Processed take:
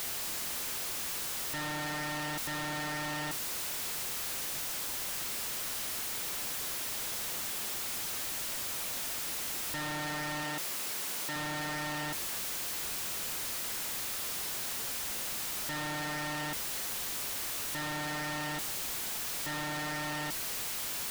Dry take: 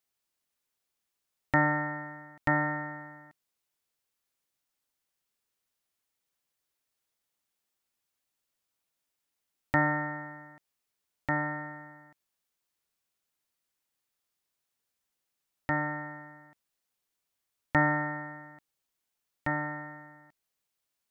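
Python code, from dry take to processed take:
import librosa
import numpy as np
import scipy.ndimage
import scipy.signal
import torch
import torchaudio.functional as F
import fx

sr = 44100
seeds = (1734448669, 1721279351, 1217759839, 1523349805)

y = np.sign(x) * np.sqrt(np.mean(np.square(x)))
y = fx.highpass(y, sr, hz=140.0, slope=12, at=(10.43, 11.36))
y = y * librosa.db_to_amplitude(1.5)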